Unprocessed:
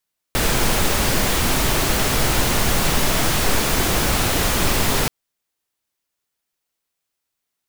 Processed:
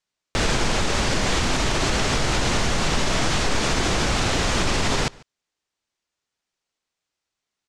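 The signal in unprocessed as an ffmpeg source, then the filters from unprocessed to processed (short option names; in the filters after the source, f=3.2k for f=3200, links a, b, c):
-f lavfi -i "anoisesrc=c=pink:a=0.646:d=4.73:r=44100:seed=1"
-filter_complex "[0:a]lowpass=f=7.4k:w=0.5412,lowpass=f=7.4k:w=1.3066,alimiter=limit=-12dB:level=0:latency=1:release=57,asplit=2[a][b];[b]adelay=145.8,volume=-24dB,highshelf=f=4k:g=-3.28[c];[a][c]amix=inputs=2:normalize=0"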